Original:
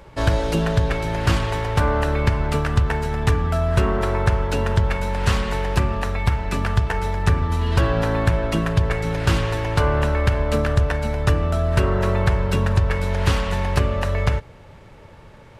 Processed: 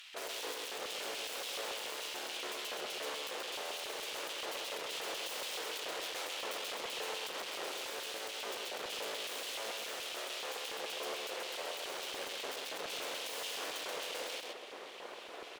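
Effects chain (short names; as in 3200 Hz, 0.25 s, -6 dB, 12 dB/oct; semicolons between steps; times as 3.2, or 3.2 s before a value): HPF 120 Hz 12 dB/oct; tube stage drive 35 dB, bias 0.3; full-wave rectifier; LFO high-pass square 3.5 Hz 470–3000 Hz; echo 0.131 s -4 dB; gain +3 dB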